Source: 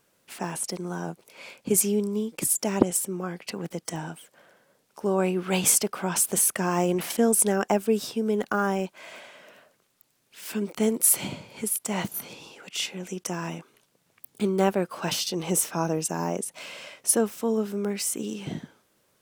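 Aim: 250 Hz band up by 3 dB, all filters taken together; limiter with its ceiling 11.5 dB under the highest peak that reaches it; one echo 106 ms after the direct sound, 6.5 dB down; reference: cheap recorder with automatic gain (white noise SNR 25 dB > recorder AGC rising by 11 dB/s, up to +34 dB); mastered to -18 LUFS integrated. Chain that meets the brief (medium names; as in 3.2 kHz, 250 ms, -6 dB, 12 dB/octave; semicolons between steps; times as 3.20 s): peaking EQ 250 Hz +4 dB; peak limiter -13 dBFS; delay 106 ms -6.5 dB; white noise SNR 25 dB; recorder AGC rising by 11 dB/s, up to +34 dB; trim +7.5 dB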